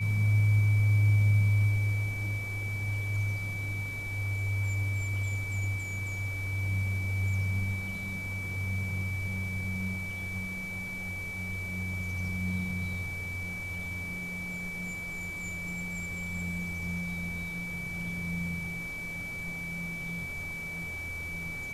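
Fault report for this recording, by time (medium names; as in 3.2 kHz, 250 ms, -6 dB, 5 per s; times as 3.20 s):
whine 2.3 kHz -36 dBFS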